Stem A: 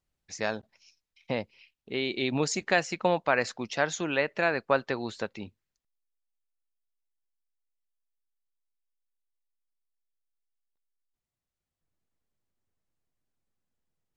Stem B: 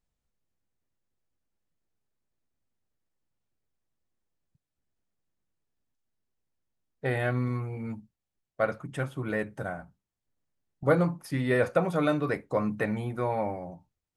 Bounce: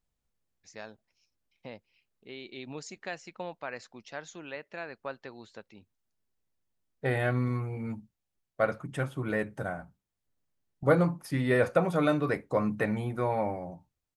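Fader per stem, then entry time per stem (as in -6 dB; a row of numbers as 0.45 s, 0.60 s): -13.5 dB, 0.0 dB; 0.35 s, 0.00 s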